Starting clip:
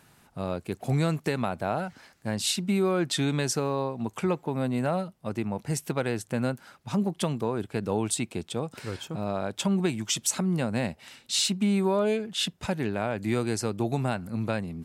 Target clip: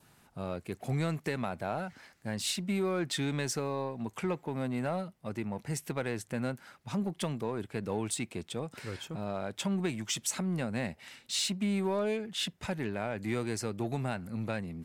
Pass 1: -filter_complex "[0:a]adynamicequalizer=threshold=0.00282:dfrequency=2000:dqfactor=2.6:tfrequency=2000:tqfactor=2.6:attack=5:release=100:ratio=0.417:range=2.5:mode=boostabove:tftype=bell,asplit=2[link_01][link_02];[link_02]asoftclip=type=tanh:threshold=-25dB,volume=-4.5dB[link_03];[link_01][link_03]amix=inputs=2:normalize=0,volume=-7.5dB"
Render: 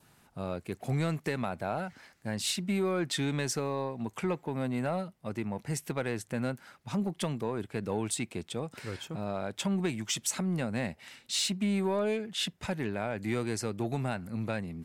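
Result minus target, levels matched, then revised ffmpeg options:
soft clipping: distortion −6 dB
-filter_complex "[0:a]adynamicequalizer=threshold=0.00282:dfrequency=2000:dqfactor=2.6:tfrequency=2000:tqfactor=2.6:attack=5:release=100:ratio=0.417:range=2.5:mode=boostabove:tftype=bell,asplit=2[link_01][link_02];[link_02]asoftclip=type=tanh:threshold=-34dB,volume=-4.5dB[link_03];[link_01][link_03]amix=inputs=2:normalize=0,volume=-7.5dB"

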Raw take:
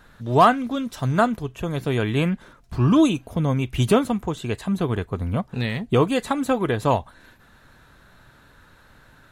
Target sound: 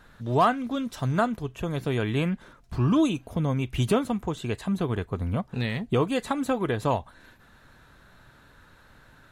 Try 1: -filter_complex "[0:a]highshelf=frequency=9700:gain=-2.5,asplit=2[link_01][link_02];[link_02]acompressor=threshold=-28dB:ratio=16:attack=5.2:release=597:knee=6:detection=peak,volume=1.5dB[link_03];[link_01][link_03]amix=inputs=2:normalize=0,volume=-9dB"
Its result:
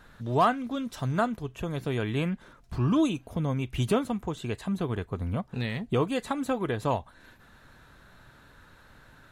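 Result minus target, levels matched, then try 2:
downward compressor: peak gain reduction +9.5 dB
-filter_complex "[0:a]highshelf=frequency=9700:gain=-2.5,asplit=2[link_01][link_02];[link_02]acompressor=threshold=-18dB:ratio=16:attack=5.2:release=597:knee=6:detection=peak,volume=1.5dB[link_03];[link_01][link_03]amix=inputs=2:normalize=0,volume=-9dB"

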